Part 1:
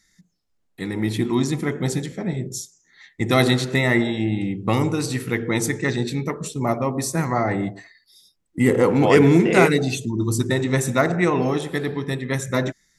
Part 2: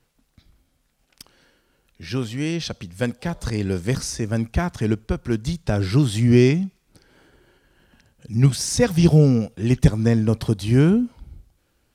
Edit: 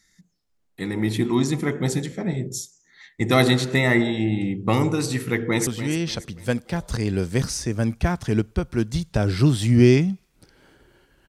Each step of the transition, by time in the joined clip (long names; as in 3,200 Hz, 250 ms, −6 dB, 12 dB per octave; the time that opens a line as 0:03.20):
part 1
0:05.23–0:05.67: delay throw 290 ms, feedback 40%, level −11.5 dB
0:05.67: continue with part 2 from 0:02.20